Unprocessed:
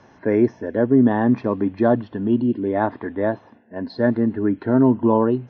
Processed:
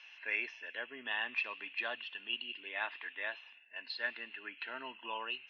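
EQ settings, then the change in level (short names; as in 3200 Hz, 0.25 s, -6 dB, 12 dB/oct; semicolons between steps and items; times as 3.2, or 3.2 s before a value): resonant high-pass 2700 Hz, resonance Q 12; air absorption 130 m; 0.0 dB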